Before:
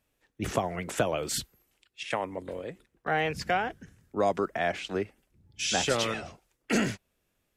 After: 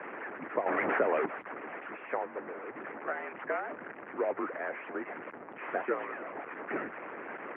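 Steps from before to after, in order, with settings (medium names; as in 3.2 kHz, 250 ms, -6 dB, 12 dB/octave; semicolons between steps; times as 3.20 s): one-bit delta coder 16 kbps, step -26.5 dBFS; harmonic-percussive split harmonic -16 dB; mistuned SSB -59 Hz 350–2100 Hz; 0.66–1.26 s: level flattener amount 70%; trim -1 dB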